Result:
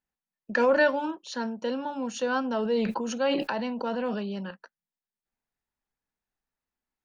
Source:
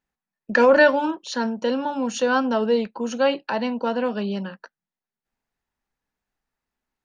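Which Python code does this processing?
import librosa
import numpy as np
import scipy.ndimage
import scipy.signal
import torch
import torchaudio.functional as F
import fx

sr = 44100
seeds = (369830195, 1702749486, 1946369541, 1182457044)

y = fx.sustainer(x, sr, db_per_s=23.0, at=(2.4, 4.51))
y = y * 10.0 ** (-7.0 / 20.0)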